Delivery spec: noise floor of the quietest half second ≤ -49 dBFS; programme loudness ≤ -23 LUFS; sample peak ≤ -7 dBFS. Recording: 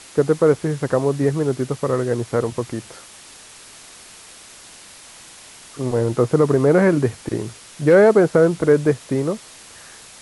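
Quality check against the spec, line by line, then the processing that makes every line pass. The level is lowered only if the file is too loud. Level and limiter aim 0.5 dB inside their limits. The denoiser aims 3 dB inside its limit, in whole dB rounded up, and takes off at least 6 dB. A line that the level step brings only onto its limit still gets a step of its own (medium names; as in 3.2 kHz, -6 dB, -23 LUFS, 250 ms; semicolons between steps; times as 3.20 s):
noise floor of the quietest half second -43 dBFS: fail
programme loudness -18.5 LUFS: fail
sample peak -4.5 dBFS: fail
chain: noise reduction 6 dB, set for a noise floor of -43 dBFS; trim -5 dB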